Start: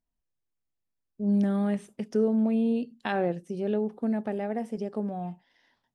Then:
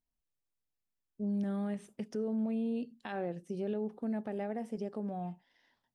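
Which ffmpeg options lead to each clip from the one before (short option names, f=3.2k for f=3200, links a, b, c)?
-af "alimiter=limit=-23dB:level=0:latency=1:release=113,volume=-4.5dB"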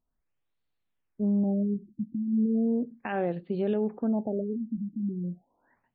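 -af "afftfilt=real='re*lt(b*sr/1024,320*pow(4700/320,0.5+0.5*sin(2*PI*0.36*pts/sr)))':imag='im*lt(b*sr/1024,320*pow(4700/320,0.5+0.5*sin(2*PI*0.36*pts/sr)))':win_size=1024:overlap=0.75,volume=8dB"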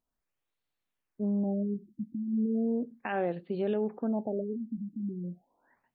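-af "lowshelf=f=210:g=-8"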